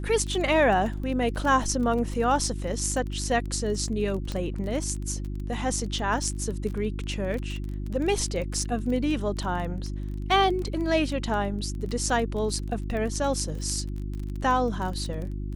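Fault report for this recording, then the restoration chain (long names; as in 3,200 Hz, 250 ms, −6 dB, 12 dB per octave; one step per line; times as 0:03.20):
surface crackle 23 per second −31 dBFS
mains hum 50 Hz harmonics 7 −32 dBFS
0:04.32: click −18 dBFS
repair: click removal
hum removal 50 Hz, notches 7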